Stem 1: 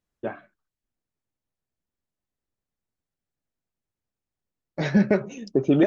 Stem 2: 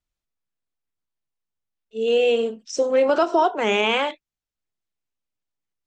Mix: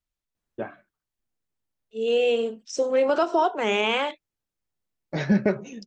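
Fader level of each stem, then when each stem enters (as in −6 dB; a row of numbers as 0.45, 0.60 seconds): −1.5, −3.0 decibels; 0.35, 0.00 seconds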